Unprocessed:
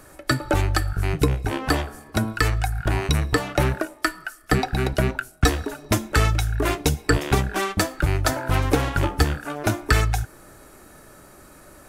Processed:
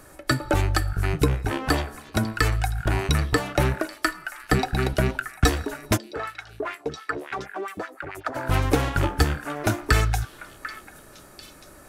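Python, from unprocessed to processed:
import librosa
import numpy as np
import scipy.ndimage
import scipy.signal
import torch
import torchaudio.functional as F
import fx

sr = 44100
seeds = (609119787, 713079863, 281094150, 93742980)

y = fx.filter_lfo_bandpass(x, sr, shape='sine', hz=fx.line((5.96, 1.6), (8.34, 9.5)), low_hz=360.0, high_hz=2100.0, q=2.5, at=(5.96, 8.34), fade=0.02)
y = fx.echo_stepped(y, sr, ms=743, hz=1600.0, octaves=1.4, feedback_pct=70, wet_db=-10)
y = y * librosa.db_to_amplitude(-1.0)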